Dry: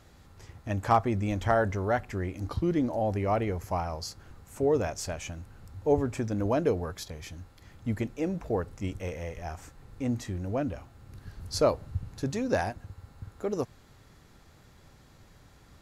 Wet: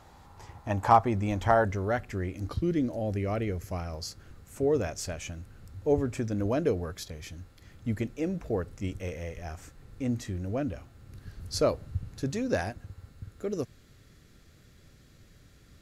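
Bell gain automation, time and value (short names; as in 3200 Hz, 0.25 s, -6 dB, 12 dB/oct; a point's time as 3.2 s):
bell 890 Hz 0.69 oct
+12.5 dB
from 0.9 s +5 dB
from 1.65 s -6 dB
from 2.54 s -14.5 dB
from 3.94 s -7 dB
from 13.09 s -14.5 dB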